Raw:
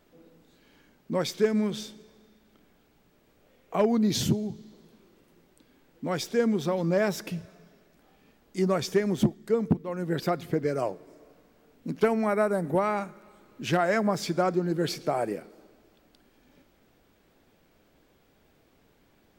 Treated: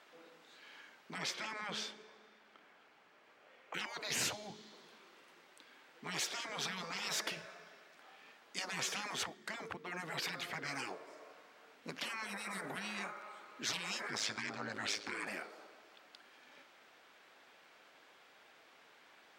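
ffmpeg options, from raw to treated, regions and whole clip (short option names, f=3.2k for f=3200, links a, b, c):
-filter_complex "[0:a]asettb=1/sr,asplit=3[a][b][c];[a]atrim=end=1.184[d];[b]atrim=start=1.18:end=3.74,asetpts=PTS-STARTPTS,afade=t=in:d=0.004:c=qsin,afade=t=out:st=2.556:d=0.004:c=qsin,highshelf=f=3.9k:g=-9.5,bandreject=f=3.7k:w=21[e];[c]atrim=start=3.736[f];[d][e]acrossfade=d=0.004:c1=hsin:c2=qsin[g];[g][f]acrossfade=d=0.004:c1=qsin:c2=hsin,asettb=1/sr,asplit=3[h][i][j];[h]atrim=end=14.104[k];[i]atrim=start=14.1:end=15.27,asetpts=PTS-STARTPTS,afade=t=in:d=0.004:c=qsin,afade=t=out:st=1.166:d=0.004:c=qsin,equalizer=f=12k:t=o:w=0.37:g=-12.5,aeval=exprs='val(0)*sin(2*PI*53*n/s)':c=same[l];[j]atrim=start=15.266[m];[k][l]acrossfade=d=0.004:c1=hsin:c2=qsin[n];[n][m]acrossfade=d=0.004:c1=qsin:c2=hsin,highpass=1.1k,aemphasis=mode=reproduction:type=bsi,afftfilt=real='re*lt(hypot(re,im),0.0178)':imag='im*lt(hypot(re,im),0.0178)':win_size=1024:overlap=0.75,volume=10dB"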